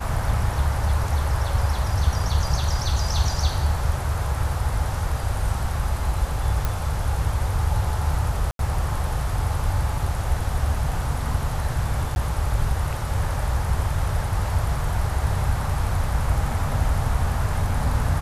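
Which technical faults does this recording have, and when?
6.65 pop
8.51–8.59 gap 82 ms
12.15–12.16 gap 11 ms

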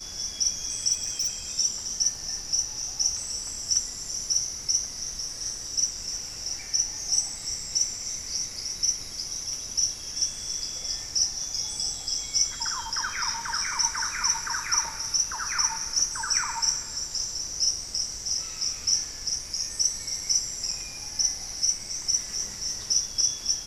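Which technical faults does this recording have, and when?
0.92–1.28 clipped -23 dBFS

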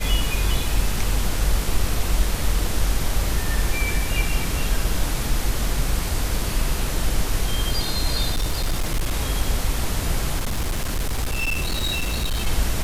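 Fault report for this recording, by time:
8.31–9.14 clipped -17.5 dBFS
10.38–12.47 clipped -19.5 dBFS

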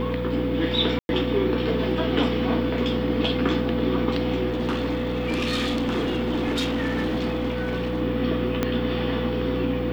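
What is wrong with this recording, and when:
hum 60 Hz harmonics 4 -29 dBFS
tone 500 Hz -28 dBFS
0.99–1.09 gap 0.101 s
4.48–8.03 clipped -21 dBFS
8.63 pop -9 dBFS

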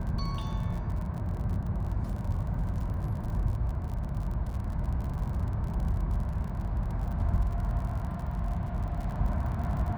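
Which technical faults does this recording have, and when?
crackle 51/s -37 dBFS

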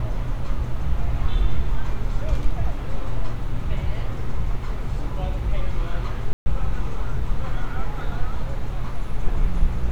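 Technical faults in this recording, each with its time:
6.33–6.46 gap 0.13 s

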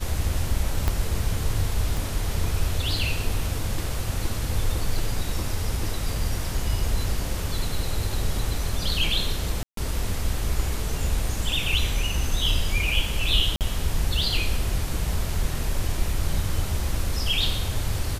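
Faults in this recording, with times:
0.88 pop -9 dBFS
1.97 pop
9.63–9.77 gap 0.143 s
13.56–13.61 gap 48 ms

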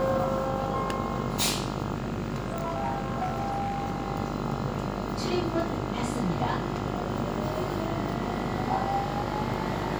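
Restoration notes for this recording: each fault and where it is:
buzz 50 Hz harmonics 28 -34 dBFS
1.94–4.06 clipped -25 dBFS

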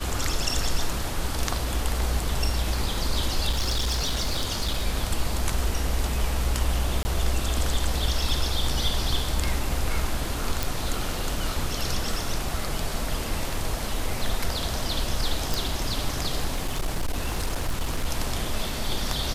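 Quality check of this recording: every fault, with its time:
3.49–4.85 clipped -20.5 dBFS
7.03–7.05 gap 20 ms
10.63 pop
15.54 pop
16.55–18.06 clipped -21.5 dBFS

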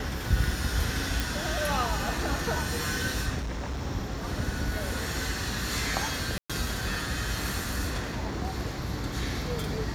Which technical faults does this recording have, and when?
1.2 pop
3.41–3.82 clipped -29 dBFS
6.38–6.5 gap 0.116 s

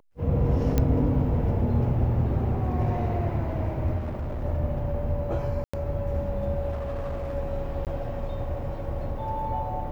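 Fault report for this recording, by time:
0.78 pop -10 dBFS
3.97–4.44 clipped -27.5 dBFS
5.64–5.74 gap 95 ms
6.71–7.35 clipped -27.5 dBFS
7.85–7.87 gap 18 ms

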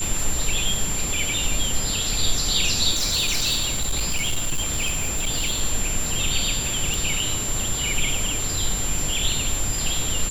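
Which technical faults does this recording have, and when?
crackle 15/s -26 dBFS
tone 7300 Hz -26 dBFS
2.91–5.61 clipped -18.5 dBFS
6.94 pop

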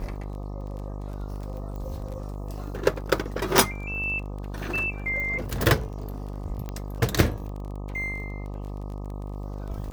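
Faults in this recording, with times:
buzz 50 Hz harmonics 25 -34 dBFS
crackle 22/s -35 dBFS
1.76 pop -27 dBFS
3.58 pop
5.2 pop -21 dBFS
6.69 pop -20 dBFS

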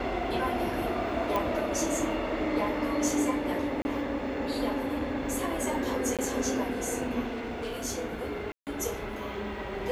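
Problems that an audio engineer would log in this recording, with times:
1.36 pop -16 dBFS
3.82–3.85 gap 30 ms
6.17–6.19 gap 17 ms
7.26–7.85 clipped -30.5 dBFS
8.52–8.67 gap 0.148 s

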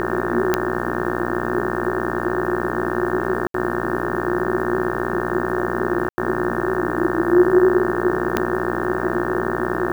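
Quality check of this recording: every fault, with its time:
buzz 60 Hz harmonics 30 -25 dBFS
0.54 pop -3 dBFS
3.47–3.54 gap 73 ms
6.09–6.18 gap 90 ms
8.37 pop -4 dBFS

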